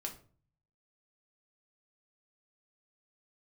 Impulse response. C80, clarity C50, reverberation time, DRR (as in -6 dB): 16.5 dB, 11.5 dB, 0.45 s, 1.0 dB